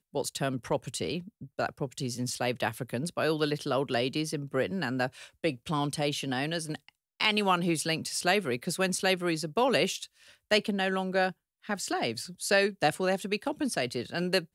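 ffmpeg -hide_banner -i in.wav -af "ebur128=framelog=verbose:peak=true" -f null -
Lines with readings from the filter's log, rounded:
Integrated loudness:
  I:         -29.9 LUFS
  Threshold: -40.1 LUFS
Loudness range:
  LRA:         3.7 LU
  Threshold: -49.9 LUFS
  LRA low:   -32.0 LUFS
  LRA high:  -28.4 LUFS
True peak:
  Peak:      -10.2 dBFS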